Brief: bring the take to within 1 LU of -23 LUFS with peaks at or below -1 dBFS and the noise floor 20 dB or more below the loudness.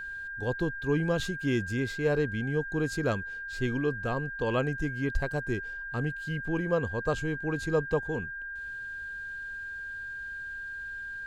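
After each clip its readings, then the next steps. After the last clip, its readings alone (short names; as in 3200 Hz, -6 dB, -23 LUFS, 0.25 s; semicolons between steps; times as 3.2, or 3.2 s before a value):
steady tone 1600 Hz; tone level -36 dBFS; loudness -31.5 LUFS; peak -14.5 dBFS; loudness target -23.0 LUFS
-> notch 1600 Hz, Q 30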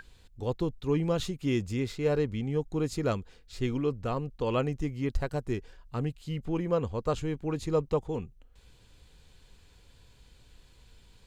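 steady tone none; loudness -31.5 LUFS; peak -14.5 dBFS; loudness target -23.0 LUFS
-> gain +8.5 dB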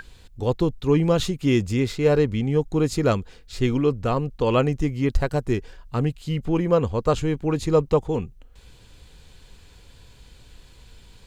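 loudness -23.0 LUFS; peak -6.0 dBFS; noise floor -50 dBFS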